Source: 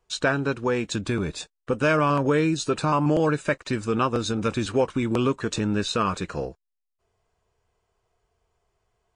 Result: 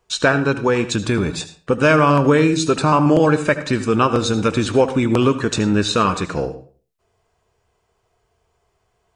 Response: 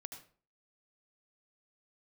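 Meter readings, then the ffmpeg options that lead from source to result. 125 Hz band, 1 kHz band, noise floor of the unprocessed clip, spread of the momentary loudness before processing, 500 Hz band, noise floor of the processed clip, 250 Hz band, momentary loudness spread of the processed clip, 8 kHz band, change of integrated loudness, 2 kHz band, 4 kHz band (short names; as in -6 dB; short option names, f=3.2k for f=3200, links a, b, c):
+7.5 dB, +7.5 dB, -80 dBFS, 8 LU, +7.5 dB, -68 dBFS, +7.5 dB, 9 LU, +7.5 dB, +7.5 dB, +7.5 dB, +7.5 dB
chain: -filter_complex "[0:a]asplit=2[a][b];[b]highpass=45[c];[1:a]atrim=start_sample=2205[d];[c][d]afir=irnorm=-1:irlink=0,volume=3.5dB[e];[a][e]amix=inputs=2:normalize=0,volume=2dB"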